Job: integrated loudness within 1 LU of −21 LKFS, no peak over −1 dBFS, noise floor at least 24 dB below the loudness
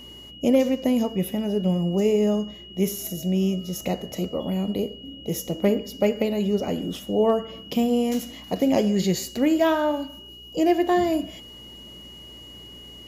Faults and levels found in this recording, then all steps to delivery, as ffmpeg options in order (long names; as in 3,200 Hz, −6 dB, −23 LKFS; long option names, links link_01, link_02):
mains hum 60 Hz; hum harmonics up to 240 Hz; level of the hum −44 dBFS; interfering tone 2,900 Hz; level of the tone −42 dBFS; integrated loudness −24.0 LKFS; sample peak −10.0 dBFS; target loudness −21.0 LKFS
→ -af "bandreject=frequency=60:width_type=h:width=4,bandreject=frequency=120:width_type=h:width=4,bandreject=frequency=180:width_type=h:width=4,bandreject=frequency=240:width_type=h:width=4"
-af "bandreject=frequency=2900:width=30"
-af "volume=3dB"